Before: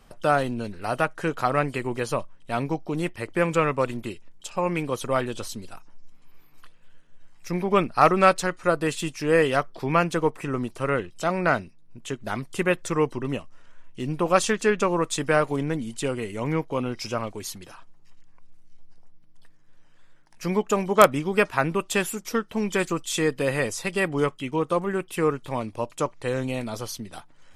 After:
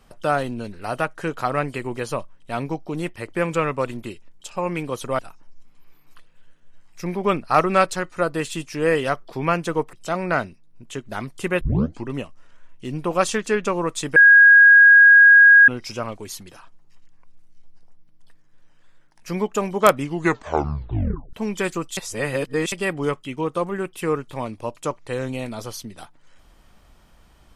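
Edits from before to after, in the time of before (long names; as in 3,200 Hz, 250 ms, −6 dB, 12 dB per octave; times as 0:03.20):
0:05.19–0:05.66: remove
0:10.40–0:11.08: remove
0:12.76: tape start 0.44 s
0:15.31–0:16.83: beep over 1,640 Hz −6.5 dBFS
0:21.15: tape stop 1.33 s
0:23.12–0:23.87: reverse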